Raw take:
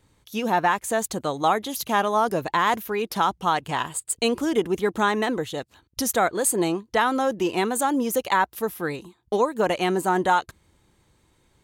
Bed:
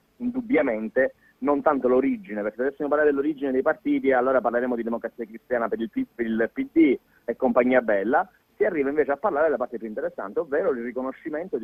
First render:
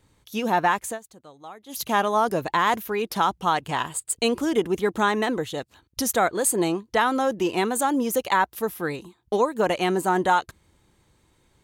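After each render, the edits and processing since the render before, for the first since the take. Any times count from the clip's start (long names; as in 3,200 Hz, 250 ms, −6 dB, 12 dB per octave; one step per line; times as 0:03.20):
0:00.85–0:01.80: duck −20.5 dB, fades 0.14 s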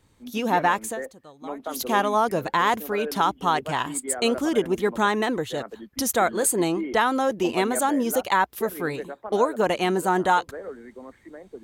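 mix in bed −13 dB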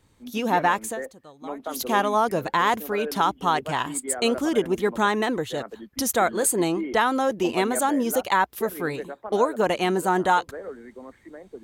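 no processing that can be heard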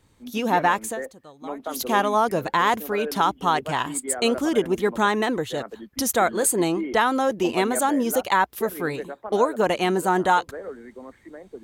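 level +1 dB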